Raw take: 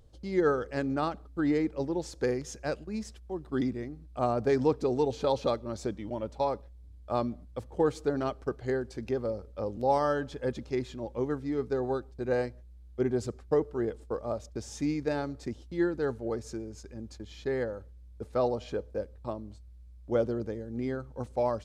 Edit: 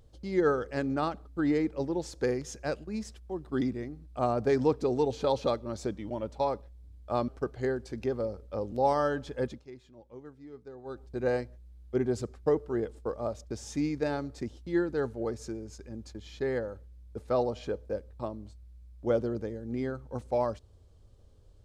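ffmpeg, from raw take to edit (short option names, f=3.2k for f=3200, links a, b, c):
-filter_complex "[0:a]asplit=4[a][b][c][d];[a]atrim=end=7.282[e];[b]atrim=start=8.328:end=10.69,asetpts=PTS-STARTPTS,afade=t=out:st=2.172:d=0.19:silence=0.158489[f];[c]atrim=start=10.69:end=11.9,asetpts=PTS-STARTPTS,volume=-16dB[g];[d]atrim=start=11.9,asetpts=PTS-STARTPTS,afade=t=in:d=0.19:silence=0.158489[h];[f][g][h]concat=n=3:v=0:a=1[i];[e][i]acrossfade=d=0.004:c1=hsin:c2=hsin"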